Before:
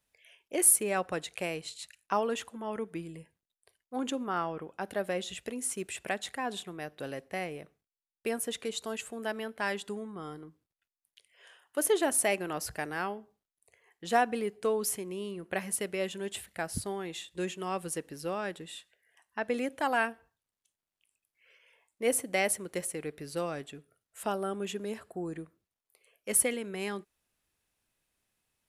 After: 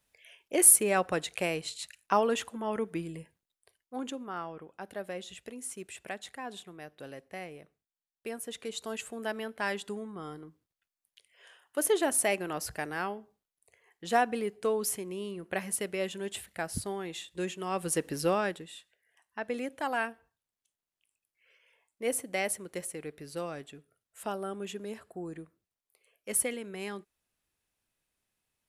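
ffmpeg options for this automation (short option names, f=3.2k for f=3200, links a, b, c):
-af "volume=18.5dB,afade=t=out:st=3.18:d=1.02:silence=0.334965,afade=t=in:st=8.43:d=0.57:silence=0.501187,afade=t=in:st=17.69:d=0.49:silence=0.354813,afade=t=out:st=18.18:d=0.5:silence=0.251189"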